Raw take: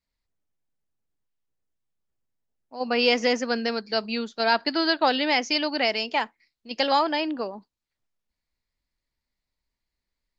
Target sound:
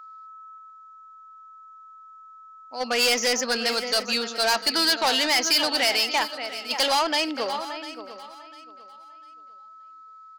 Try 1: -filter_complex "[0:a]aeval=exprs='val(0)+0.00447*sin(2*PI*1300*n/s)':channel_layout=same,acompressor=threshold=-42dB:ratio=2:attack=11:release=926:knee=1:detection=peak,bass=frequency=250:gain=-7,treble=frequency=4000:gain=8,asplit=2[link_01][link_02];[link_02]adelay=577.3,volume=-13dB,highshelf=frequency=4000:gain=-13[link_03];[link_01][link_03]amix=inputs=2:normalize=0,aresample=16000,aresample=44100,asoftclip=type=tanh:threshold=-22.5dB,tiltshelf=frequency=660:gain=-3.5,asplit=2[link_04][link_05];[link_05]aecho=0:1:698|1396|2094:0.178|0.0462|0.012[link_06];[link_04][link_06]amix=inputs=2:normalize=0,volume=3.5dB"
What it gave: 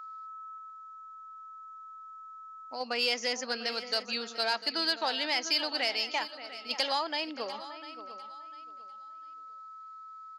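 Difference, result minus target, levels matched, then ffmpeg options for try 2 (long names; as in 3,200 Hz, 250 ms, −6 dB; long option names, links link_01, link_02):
downward compressor: peak gain reduction +15 dB
-filter_complex "[0:a]aeval=exprs='val(0)+0.00447*sin(2*PI*1300*n/s)':channel_layout=same,bass=frequency=250:gain=-7,treble=frequency=4000:gain=8,asplit=2[link_01][link_02];[link_02]adelay=577.3,volume=-13dB,highshelf=frequency=4000:gain=-13[link_03];[link_01][link_03]amix=inputs=2:normalize=0,aresample=16000,aresample=44100,asoftclip=type=tanh:threshold=-22.5dB,tiltshelf=frequency=660:gain=-3.5,asplit=2[link_04][link_05];[link_05]aecho=0:1:698|1396|2094:0.178|0.0462|0.012[link_06];[link_04][link_06]amix=inputs=2:normalize=0,volume=3.5dB"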